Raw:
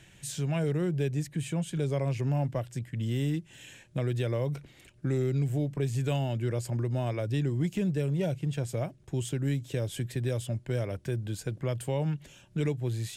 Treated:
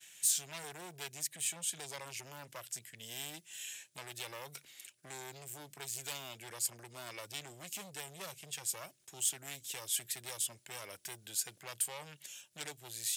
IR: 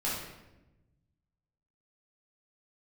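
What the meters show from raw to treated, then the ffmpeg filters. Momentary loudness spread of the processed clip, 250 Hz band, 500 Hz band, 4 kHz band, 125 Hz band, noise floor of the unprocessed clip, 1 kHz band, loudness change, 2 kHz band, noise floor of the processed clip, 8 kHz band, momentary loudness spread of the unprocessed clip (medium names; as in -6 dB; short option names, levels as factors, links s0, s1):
13 LU, -26.0 dB, -18.5 dB, +2.5 dB, -28.5 dB, -57 dBFS, -6.5 dB, -8.0 dB, -3.5 dB, -69 dBFS, +9.5 dB, 6 LU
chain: -af "aeval=exprs='0.126*(cos(1*acos(clip(val(0)/0.126,-1,1)))-cos(1*PI/2))+0.0316*(cos(3*acos(clip(val(0)/0.126,-1,1)))-cos(3*PI/2))+0.0398*(cos(5*acos(clip(val(0)/0.126,-1,1)))-cos(5*PI/2))':c=same,agate=range=0.0224:threshold=0.00355:ratio=3:detection=peak,aderivative,volume=1.68"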